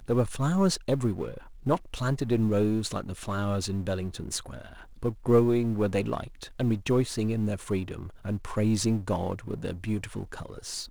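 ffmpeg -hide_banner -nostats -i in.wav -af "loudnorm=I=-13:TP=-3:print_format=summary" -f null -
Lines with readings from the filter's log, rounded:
Input Integrated:    -29.2 LUFS
Input True Peak:     -10.9 dBTP
Input LRA:             4.0 LU
Input Threshold:     -39.4 LUFS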